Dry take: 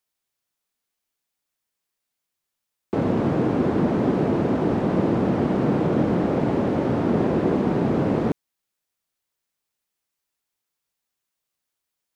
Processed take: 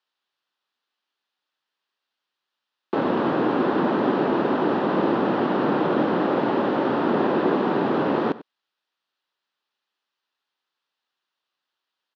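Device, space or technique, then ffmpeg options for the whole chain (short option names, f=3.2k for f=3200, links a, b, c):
phone earpiece: -af "highpass=380,equalizer=f=470:t=q:w=4:g=-4,equalizer=f=670:t=q:w=4:g=-5,equalizer=f=2.2k:t=q:w=4:g=-9,lowpass=f=4k:w=0.5412,lowpass=f=4k:w=1.3066,equalizer=f=380:t=o:w=2.3:g=-3,aecho=1:1:95:0.133,volume=8.5dB"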